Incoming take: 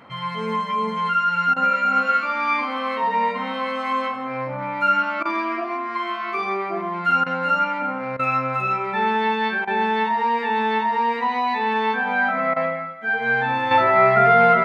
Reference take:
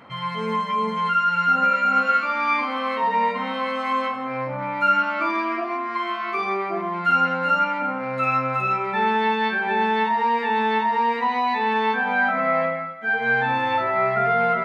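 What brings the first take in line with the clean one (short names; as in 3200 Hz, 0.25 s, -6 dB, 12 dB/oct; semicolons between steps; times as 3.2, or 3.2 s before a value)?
interpolate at 1.54/5.23/7.24/8.17/9.65/12.54, 22 ms; gain correction -6 dB, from 13.71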